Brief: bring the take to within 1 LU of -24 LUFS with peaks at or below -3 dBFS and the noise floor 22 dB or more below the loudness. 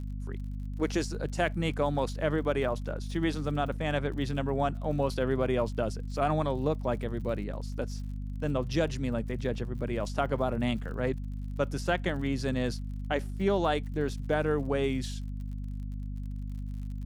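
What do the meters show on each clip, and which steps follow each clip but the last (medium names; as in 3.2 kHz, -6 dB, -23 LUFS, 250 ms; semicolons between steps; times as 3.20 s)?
tick rate 53 per s; hum 50 Hz; highest harmonic 250 Hz; hum level -33 dBFS; loudness -31.5 LUFS; peak level -13.0 dBFS; loudness target -24.0 LUFS
-> de-click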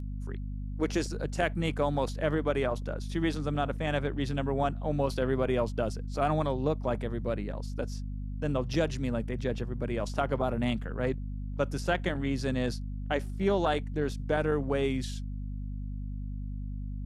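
tick rate 0.18 per s; hum 50 Hz; highest harmonic 250 Hz; hum level -33 dBFS
-> hum notches 50/100/150/200/250 Hz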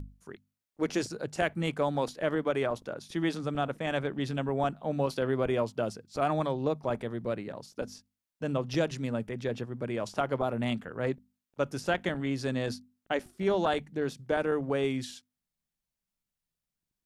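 hum not found; loudness -32.0 LUFS; peak level -13.5 dBFS; loudness target -24.0 LUFS
-> trim +8 dB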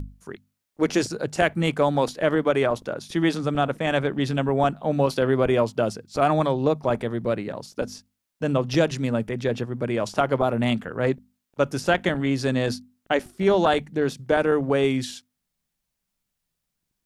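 loudness -24.0 LUFS; peak level -5.5 dBFS; noise floor -81 dBFS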